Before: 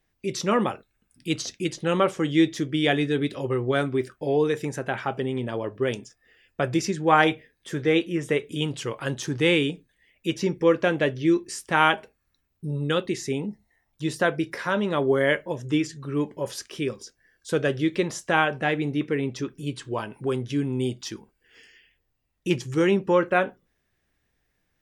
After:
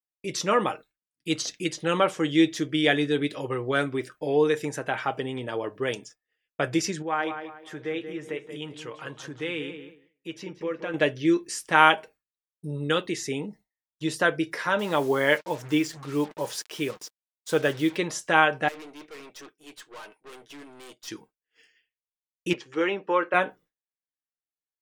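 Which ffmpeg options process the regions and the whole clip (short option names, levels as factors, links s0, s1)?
-filter_complex "[0:a]asettb=1/sr,asplit=3[s0][s1][s2];[s0]atrim=end=7.024[s3];[s1]atrim=start=7.02:end=10.94,asetpts=PTS-STARTPTS,afade=t=in:d=0.004:c=qsin,afade=t=out:st=3.916:d=0.004:c=qsin,acompressor=threshold=0.00562:ratio=1.5:attack=3.2:release=140:knee=1:detection=peak,bass=f=250:g=-2,treble=f=4000:g=-8,asplit=2[s4][s5];[s5]adelay=182,lowpass=f=2600:p=1,volume=0.376,asplit=2[s6][s7];[s7]adelay=182,lowpass=f=2600:p=1,volume=0.37,asplit=2[s8][s9];[s9]adelay=182,lowpass=f=2600:p=1,volume=0.37,asplit=2[s10][s11];[s11]adelay=182,lowpass=f=2600:p=1,volume=0.37[s12];[s4][s6][s8][s10][s12]amix=inputs=5:normalize=0,atrim=end_sample=172872[s13];[s2]atrim=start=10.936[s14];[s3][s13]acrossfade=d=0.004:c1=hsin:c2=qsin[s15];[s15][s14]acrossfade=d=0.004:c1=qsin:c2=hsin,asettb=1/sr,asplit=3[s16][s17][s18];[s16]atrim=end=14.794[s19];[s17]atrim=start=14.79:end=17.97,asetpts=PTS-STARTPTS,afade=t=in:d=0.004:c=qsin,afade=t=out:st=3.176:d=0.004:c=qsin,equalizer=f=850:w=4.9:g=7,acrusher=bits=6:mix=0:aa=0.5[s20];[s18]atrim=start=17.966[s21];[s19][s20]acrossfade=d=0.004:c1=hsin:c2=qsin[s22];[s22][s21]acrossfade=d=0.004:c1=qsin:c2=hsin,asettb=1/sr,asplit=3[s23][s24][s25];[s23]atrim=end=18.684[s26];[s24]atrim=start=18.68:end=21.08,asetpts=PTS-STARTPTS,afade=t=in:d=0.004:c=qsin,afade=t=out:st=2.396:d=0.004:c=qsin,highpass=400,aeval=exprs='(tanh(112*val(0)+0.6)-tanh(0.6))/112':c=same[s27];[s25]atrim=start=21.076[s28];[s26][s27]acrossfade=d=0.004:c1=hsin:c2=qsin[s29];[s29][s28]acrossfade=d=0.004:c1=qsin:c2=hsin,asettb=1/sr,asplit=3[s30][s31][s32];[s30]atrim=end=22.534[s33];[s31]atrim=start=22.53:end=23.34,asetpts=PTS-STARTPTS,afade=t=in:d=0.004:c=qsin,afade=t=out:st=0.806:d=0.004:c=qsin,agate=range=0.0224:threshold=0.0112:ratio=3:release=100:detection=peak,highpass=380,lowpass=3100[s34];[s32]atrim=start=23.336[s35];[s33][s34]acrossfade=d=0.004:c1=hsin:c2=qsin[s36];[s36][s35]acrossfade=d=0.004:c1=qsin:c2=hsin,lowshelf=f=220:g=-11.5,agate=range=0.0224:threshold=0.00562:ratio=3:detection=peak,aecho=1:1:6.5:0.36,volume=1.12"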